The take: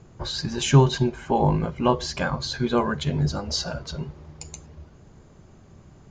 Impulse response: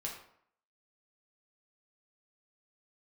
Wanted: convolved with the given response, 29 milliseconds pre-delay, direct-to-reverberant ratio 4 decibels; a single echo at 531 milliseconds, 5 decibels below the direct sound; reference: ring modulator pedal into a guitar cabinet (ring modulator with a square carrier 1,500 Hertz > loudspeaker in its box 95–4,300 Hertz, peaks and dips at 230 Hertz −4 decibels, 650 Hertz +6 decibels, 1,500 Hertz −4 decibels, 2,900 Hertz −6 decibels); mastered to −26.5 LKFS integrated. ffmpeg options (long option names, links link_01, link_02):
-filter_complex "[0:a]aecho=1:1:531:0.562,asplit=2[link_01][link_02];[1:a]atrim=start_sample=2205,adelay=29[link_03];[link_02][link_03]afir=irnorm=-1:irlink=0,volume=-4dB[link_04];[link_01][link_04]amix=inputs=2:normalize=0,aeval=exprs='val(0)*sgn(sin(2*PI*1500*n/s))':channel_layout=same,highpass=95,equalizer=frequency=230:width_type=q:width=4:gain=-4,equalizer=frequency=650:width_type=q:width=4:gain=6,equalizer=frequency=1500:width_type=q:width=4:gain=-4,equalizer=frequency=2900:width_type=q:width=4:gain=-6,lowpass=frequency=4300:width=0.5412,lowpass=frequency=4300:width=1.3066,volume=-5dB"